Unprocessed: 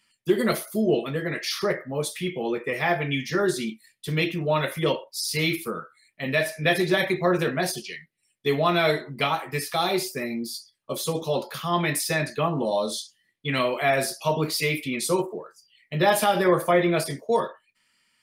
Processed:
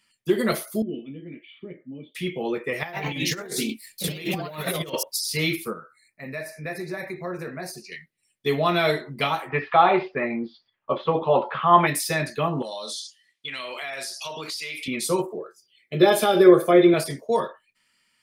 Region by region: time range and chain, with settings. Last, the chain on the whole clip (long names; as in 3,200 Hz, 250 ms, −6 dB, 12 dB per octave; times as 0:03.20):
0:00.82–0:02.15: formant resonators in series i + double-tracking delay 17 ms −14 dB
0:02.83–0:05.19: delay with pitch and tempo change per echo 97 ms, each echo +2 semitones, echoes 2, each echo −6 dB + high-shelf EQ 5,300 Hz +9.5 dB + compressor whose output falls as the input rises −28 dBFS, ratio −0.5
0:05.73–0:07.92: downward compressor 1.5 to 1, threshold −46 dBFS + Butterworth band-reject 3,200 Hz, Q 2
0:09.50–0:11.87: Butterworth low-pass 3,100 Hz + parametric band 1,000 Hz +11.5 dB 1.8 octaves
0:12.62–0:14.88: low-pass filter 5,900 Hz + spectral tilt +4.5 dB per octave + downward compressor, threshold −30 dBFS
0:15.38–0:16.94: notch comb filter 940 Hz + hollow resonant body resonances 380/3,600 Hz, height 11 dB, ringing for 30 ms
whole clip: no processing